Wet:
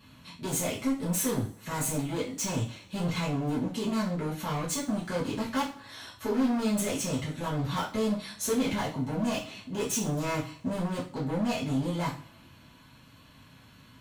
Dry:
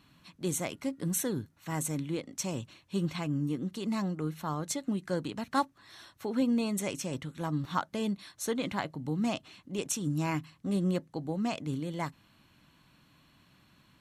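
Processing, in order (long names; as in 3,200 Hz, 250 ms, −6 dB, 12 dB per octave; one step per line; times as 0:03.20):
tape wow and flutter 17 cents
gain into a clipping stage and back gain 34.5 dB
coupled-rooms reverb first 0.36 s, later 1.8 s, from −27 dB, DRR −7 dB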